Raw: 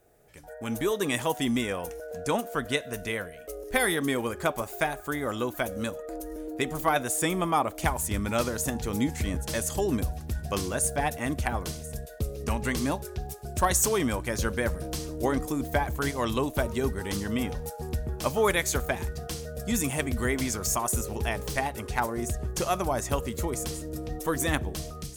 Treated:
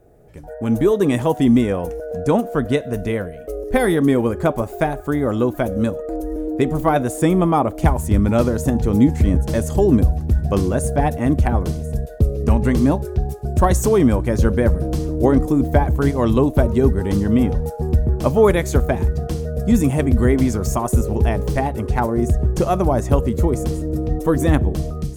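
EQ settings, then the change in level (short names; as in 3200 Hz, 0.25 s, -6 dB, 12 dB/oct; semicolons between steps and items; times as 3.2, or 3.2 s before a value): tilt shelf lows +9 dB, about 940 Hz; +6.0 dB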